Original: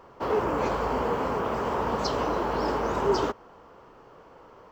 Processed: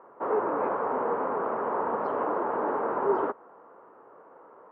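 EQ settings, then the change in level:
high-pass filter 310 Hz 12 dB per octave
low-pass filter 1,600 Hz 24 dB per octave
0.0 dB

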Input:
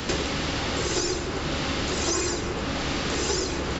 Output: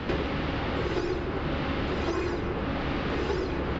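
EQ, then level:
high-frequency loss of the air 340 metres
high-shelf EQ 6,800 Hz −5.5 dB
0.0 dB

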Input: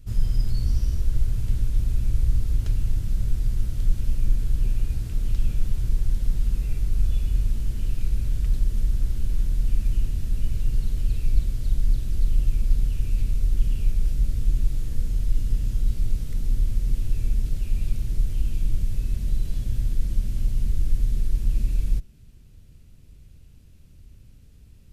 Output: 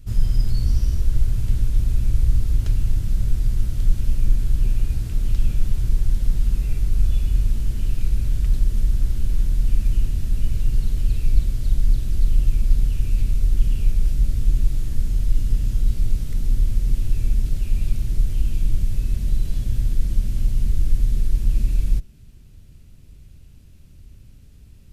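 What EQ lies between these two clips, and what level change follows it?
notch filter 480 Hz, Q 16
+3.5 dB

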